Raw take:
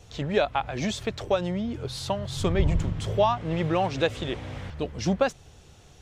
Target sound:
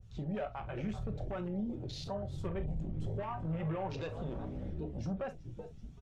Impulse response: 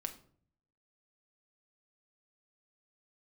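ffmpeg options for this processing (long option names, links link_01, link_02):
-filter_complex "[0:a]asettb=1/sr,asplit=3[link_01][link_02][link_03];[link_01]atrim=end=0.824[link_04];[link_02]atrim=start=0.82:end=1.34,asetpts=PTS-STARTPTS,afade=type=in:duration=0.004:curve=qsin,afade=type=out:start_time=0.516:duration=0.004:curve=qsin,lowshelf=frequency=160:gain=11.5[link_05];[link_03]atrim=start=1.336[link_06];[link_04][link_05]acrossfade=duration=0.004:curve1=hsin:curve2=qsin[link_07];[link_07][link_06]acrossfade=duration=0.004:curve1=qsin:curve2=hsin,asplit=7[link_08][link_09][link_10][link_11][link_12][link_13][link_14];[link_09]adelay=380,afreqshift=-67,volume=-19dB[link_15];[link_10]adelay=760,afreqshift=-134,volume=-22.9dB[link_16];[link_11]adelay=1140,afreqshift=-201,volume=-26.8dB[link_17];[link_12]adelay=1520,afreqshift=-268,volume=-30.6dB[link_18];[link_13]adelay=1900,afreqshift=-335,volume=-34.5dB[link_19];[link_14]adelay=2280,afreqshift=-402,volume=-38.4dB[link_20];[link_08][link_15][link_16][link_17][link_18][link_19][link_20]amix=inputs=7:normalize=0,asoftclip=type=tanh:threshold=-20dB,flanger=delay=0.5:depth=1.7:regen=-52:speed=0.64:shape=triangular,afwtdn=0.00891,acompressor=threshold=-37dB:ratio=2,alimiter=level_in=10dB:limit=-24dB:level=0:latency=1:release=12,volume=-10dB[link_21];[1:a]atrim=start_sample=2205,atrim=end_sample=3087[link_22];[link_21][link_22]afir=irnorm=-1:irlink=0,adynamicequalizer=threshold=0.00126:dfrequency=1800:dqfactor=0.7:tfrequency=1800:tqfactor=0.7:attack=5:release=100:ratio=0.375:range=1.5:mode=cutabove:tftype=highshelf,volume=3.5dB"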